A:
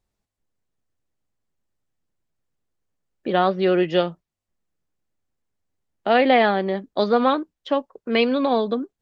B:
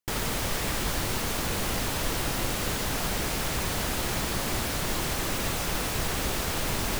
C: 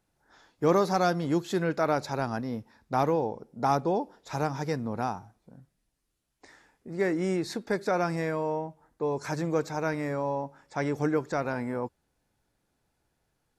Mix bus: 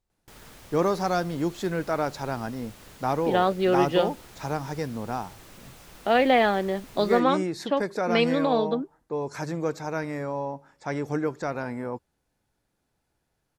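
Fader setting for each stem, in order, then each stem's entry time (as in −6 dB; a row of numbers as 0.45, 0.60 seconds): −3.5, −19.5, −0.5 decibels; 0.00, 0.20, 0.10 seconds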